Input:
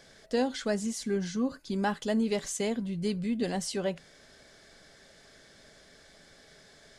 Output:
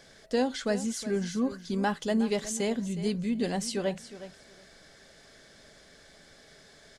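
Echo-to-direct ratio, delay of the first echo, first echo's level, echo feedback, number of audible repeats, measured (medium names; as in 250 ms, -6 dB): -14.0 dB, 364 ms, -14.0 dB, 18%, 2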